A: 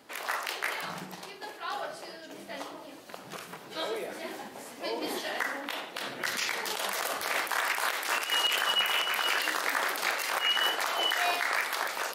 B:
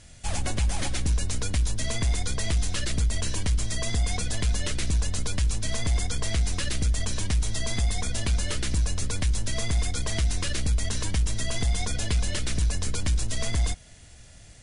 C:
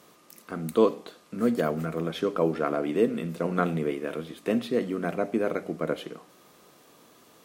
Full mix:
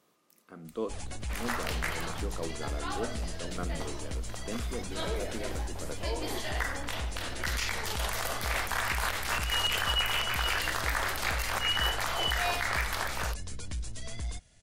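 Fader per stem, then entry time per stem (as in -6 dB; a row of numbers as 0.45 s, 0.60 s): -2.0 dB, -11.5 dB, -13.5 dB; 1.20 s, 0.65 s, 0.00 s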